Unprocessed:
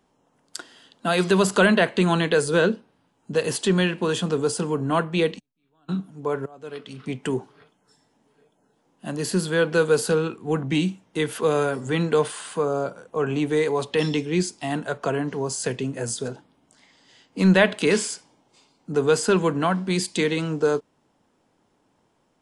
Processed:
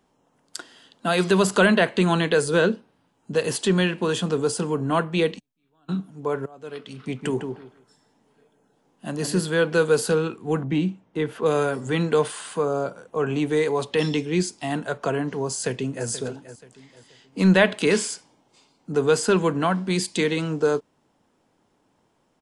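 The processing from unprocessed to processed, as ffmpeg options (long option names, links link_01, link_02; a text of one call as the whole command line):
ffmpeg -i in.wav -filter_complex "[0:a]asettb=1/sr,asplit=3[link_01][link_02][link_03];[link_01]atrim=end=7.014[link_04];[link_02]atrim=start=7.01:end=9.46,asetpts=PTS-STARTPTS,afade=type=in:duration=0.004:curve=qsin,afade=type=out:start_time=2.446:duration=0.004:curve=qsin,asplit=2[link_05][link_06];[link_06]adelay=154,lowpass=frequency=2000:poles=1,volume=-6dB,asplit=2[link_07][link_08];[link_08]adelay=154,lowpass=frequency=2000:poles=1,volume=0.21,asplit=2[link_09][link_10];[link_10]adelay=154,lowpass=frequency=2000:poles=1,volume=0.21[link_11];[link_05][link_07][link_09][link_11]amix=inputs=4:normalize=0,atrim=end_sample=108045[link_12];[link_03]atrim=start=9.456[link_13];[link_04][link_12]acrossfade=duration=0.004:curve1=hsin:curve2=qsin[link_14];[link_14][link_13]acrossfade=duration=0.004:curve1=qsin:curve2=hsin,asettb=1/sr,asplit=3[link_15][link_16][link_17];[link_15]atrim=end=10.644[link_18];[link_16]atrim=start=10.64:end=11.46,asetpts=PTS-STARTPTS,afade=type=in:duration=0.004:curve=qsin,afade=type=out:start_time=0.816:duration=0.004:curve=qsin,lowpass=frequency=1400:poles=1[link_19];[link_17]atrim=start=11.456[link_20];[link_18][link_19]acrossfade=duration=0.004:curve1=hsin:curve2=qsin[link_21];[link_21][link_20]acrossfade=duration=0.004:curve1=qsin:curve2=hsin,asplit=2[link_22][link_23];[link_23]afade=type=in:start_time=15.52:duration=0.01,afade=type=out:start_time=16.07:duration=0.01,aecho=0:1:480|960|1440:0.211349|0.0739721|0.0258902[link_24];[link_22][link_24]amix=inputs=2:normalize=0" out.wav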